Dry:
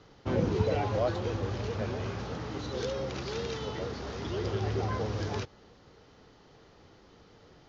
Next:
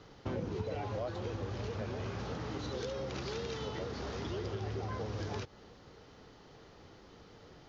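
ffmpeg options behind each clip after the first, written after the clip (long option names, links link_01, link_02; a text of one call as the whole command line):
ffmpeg -i in.wav -af "acompressor=threshold=-37dB:ratio=4,volume=1dB" out.wav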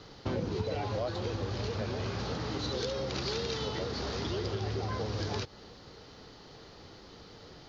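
ffmpeg -i in.wav -af "equalizer=frequency=4400:width_type=o:width=0.66:gain=8,volume=4dB" out.wav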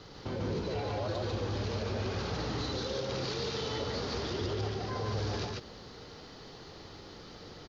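ffmpeg -i in.wav -filter_complex "[0:a]alimiter=level_in=5.5dB:limit=-24dB:level=0:latency=1:release=12,volume=-5.5dB,asplit=2[link_01][link_02];[link_02]aecho=0:1:49.56|145.8:0.282|0.891[link_03];[link_01][link_03]amix=inputs=2:normalize=0" out.wav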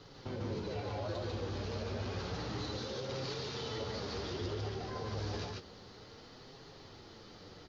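ffmpeg -i in.wav -af "flanger=delay=7:depth=6.5:regen=-35:speed=0.3:shape=triangular,volume=-1dB" out.wav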